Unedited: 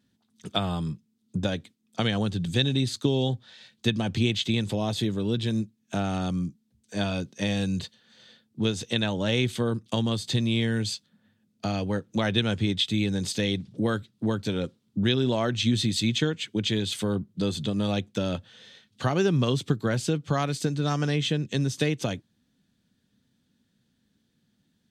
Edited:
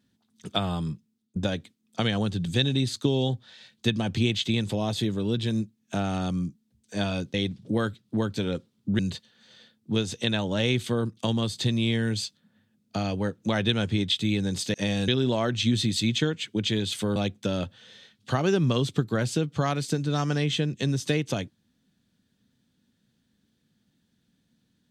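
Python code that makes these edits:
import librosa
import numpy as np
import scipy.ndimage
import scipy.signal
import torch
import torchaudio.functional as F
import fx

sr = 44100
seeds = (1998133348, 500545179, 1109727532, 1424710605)

y = fx.edit(x, sr, fx.fade_out_to(start_s=0.93, length_s=0.43, curve='qsin', floor_db=-22.0),
    fx.swap(start_s=7.34, length_s=0.34, other_s=13.43, other_length_s=1.65),
    fx.cut(start_s=17.16, length_s=0.72), tone=tone)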